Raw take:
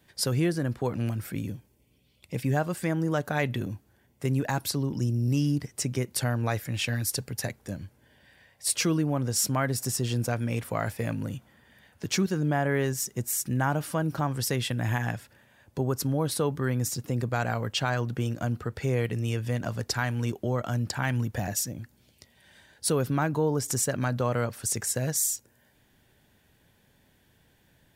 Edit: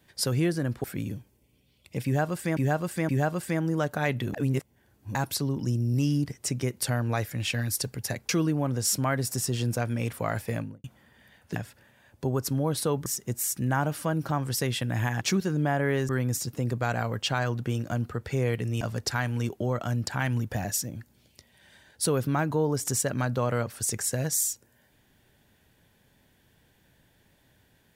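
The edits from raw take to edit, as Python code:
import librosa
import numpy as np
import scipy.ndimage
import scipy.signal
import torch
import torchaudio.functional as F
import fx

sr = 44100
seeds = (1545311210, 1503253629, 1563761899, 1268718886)

y = fx.studio_fade_out(x, sr, start_s=11.03, length_s=0.32)
y = fx.edit(y, sr, fx.cut(start_s=0.84, length_s=0.38),
    fx.repeat(start_s=2.43, length_s=0.52, count=3),
    fx.reverse_span(start_s=3.68, length_s=0.81),
    fx.cut(start_s=7.63, length_s=1.17),
    fx.swap(start_s=12.07, length_s=0.88, other_s=15.1, other_length_s=1.5),
    fx.cut(start_s=19.32, length_s=0.32), tone=tone)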